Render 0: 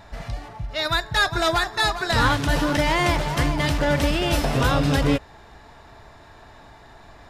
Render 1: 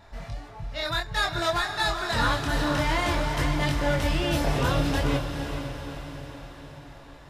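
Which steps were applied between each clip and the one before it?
multi-voice chorus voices 2, 0.55 Hz, delay 24 ms, depth 3.9 ms
feedback delay with all-pass diffusion 472 ms, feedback 55%, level −7.5 dB
level −2.5 dB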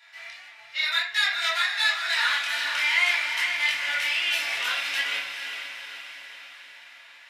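high-pass with resonance 2,300 Hz, resonance Q 2
convolution reverb RT60 0.45 s, pre-delay 4 ms, DRR −4.5 dB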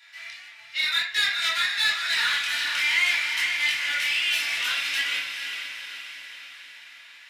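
parametric band 670 Hz −10.5 dB 1.8 octaves
in parallel at −6 dB: hard clipping −27.5 dBFS, distortion −8 dB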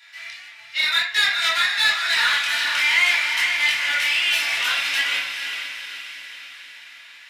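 dynamic equaliser 790 Hz, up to +6 dB, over −43 dBFS, Q 1
level +3.5 dB

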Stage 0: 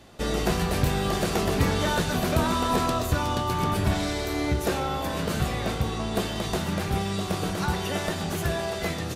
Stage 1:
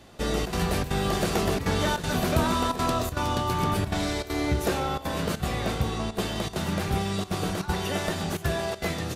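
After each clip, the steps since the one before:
gate pattern "xxxxxx.xxxx.xxx" 199 BPM −12 dB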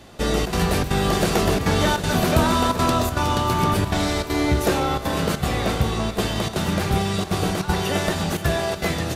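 feedback delay with all-pass diffusion 468 ms, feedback 61%, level −14 dB
level +5.5 dB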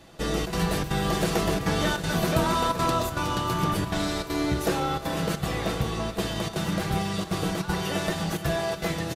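comb filter 6.1 ms, depth 44%
level −6 dB

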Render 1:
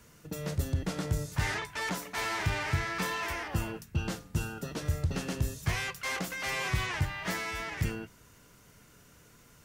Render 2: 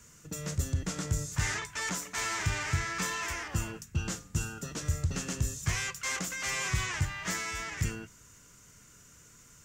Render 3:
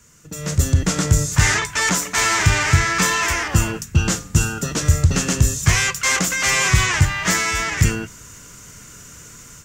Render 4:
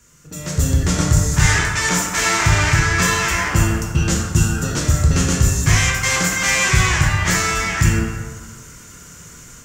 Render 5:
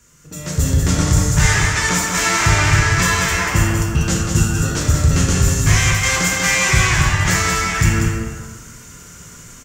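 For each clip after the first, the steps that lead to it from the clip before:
drawn EQ curve 100 Hz 0 dB, 810 Hz −6 dB, 1,200 Hz 0 dB, 4,300 Hz −1 dB, 7,200 Hz +11 dB, 10,000 Hz −2 dB
automatic gain control gain up to 12 dB; level +3.5 dB
dense smooth reverb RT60 1.6 s, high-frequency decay 0.5×, DRR −0.5 dB; level −2 dB
single-tap delay 191 ms −5.5 dB

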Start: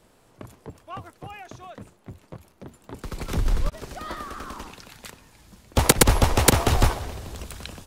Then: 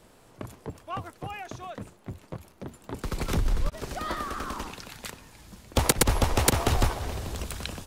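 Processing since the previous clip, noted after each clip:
downward compressor 2 to 1, threshold −27 dBFS, peak gain reduction 9.5 dB
level +2.5 dB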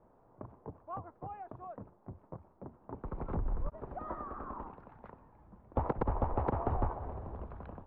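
transistor ladder low-pass 1,200 Hz, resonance 35%
level −1.5 dB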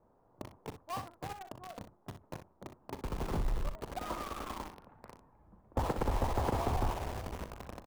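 in parallel at −8.5 dB: log-companded quantiser 2 bits
on the sum: ambience of single reflections 39 ms −14 dB, 62 ms −10 dB
level −4 dB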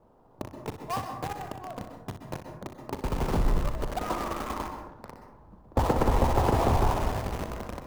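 running median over 15 samples
dense smooth reverb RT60 0.64 s, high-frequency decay 0.4×, pre-delay 115 ms, DRR 6.5 dB
level +8 dB

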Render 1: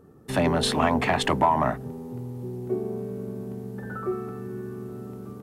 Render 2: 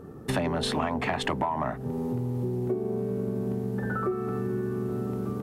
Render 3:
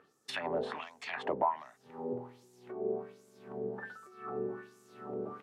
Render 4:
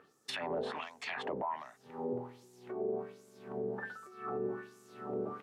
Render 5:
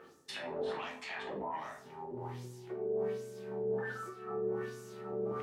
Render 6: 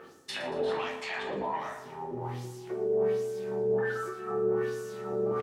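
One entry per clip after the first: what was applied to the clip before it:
high-shelf EQ 5,100 Hz −5.5 dB; downward compressor 6 to 1, threshold −35 dBFS, peak gain reduction 18 dB; level +9 dB
auto-filter band-pass sine 1.3 Hz 490–7,400 Hz; level +2 dB
brickwall limiter −29.5 dBFS, peak gain reduction 11.5 dB; level +2 dB
reversed playback; downward compressor, threshold −46 dBFS, peak gain reduction 13.5 dB; reversed playback; convolution reverb RT60 0.45 s, pre-delay 5 ms, DRR −2.5 dB; level +3.5 dB
repeating echo 116 ms, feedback 53%, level −13 dB; level +6 dB

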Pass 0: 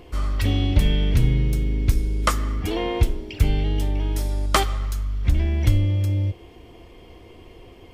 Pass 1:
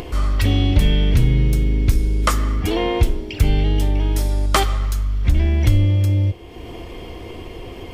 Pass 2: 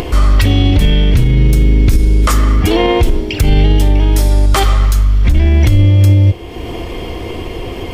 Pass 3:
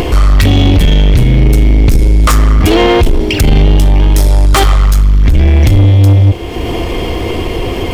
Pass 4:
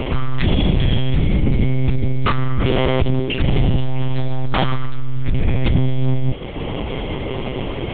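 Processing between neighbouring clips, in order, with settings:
in parallel at 0 dB: brickwall limiter −13.5 dBFS, peak gain reduction 10.5 dB; on the sum: upward compression, threshold −23 dBFS; level −1 dB
boost into a limiter +11.5 dB; level −1 dB
leveller curve on the samples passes 2
one-pitch LPC vocoder at 8 kHz 130 Hz; level −8.5 dB

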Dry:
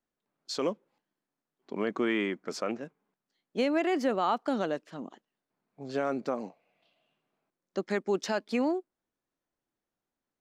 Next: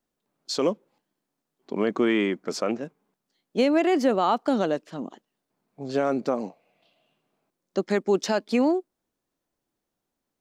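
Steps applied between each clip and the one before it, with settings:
parametric band 1,700 Hz −4 dB 1.6 octaves
level +7 dB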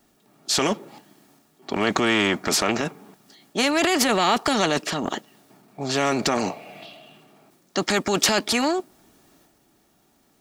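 transient designer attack −3 dB, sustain +6 dB
notch comb filter 510 Hz
every bin compressed towards the loudest bin 2 to 1
level +8 dB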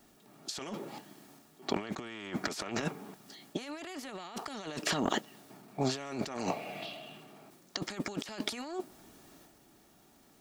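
compressor whose output falls as the input rises −28 dBFS, ratio −0.5
level −7 dB

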